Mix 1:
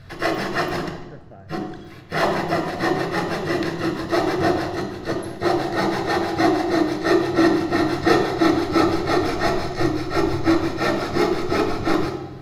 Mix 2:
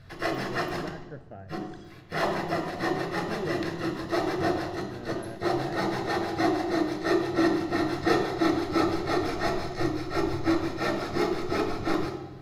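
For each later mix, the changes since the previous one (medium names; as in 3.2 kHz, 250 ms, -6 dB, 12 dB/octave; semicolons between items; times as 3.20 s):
background -7.0 dB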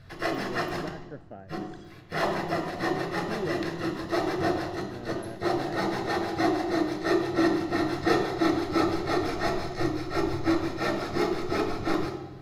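speech: send off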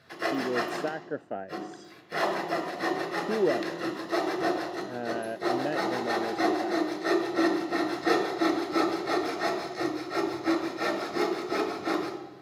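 speech +10.0 dB; master: add high-pass 280 Hz 12 dB/octave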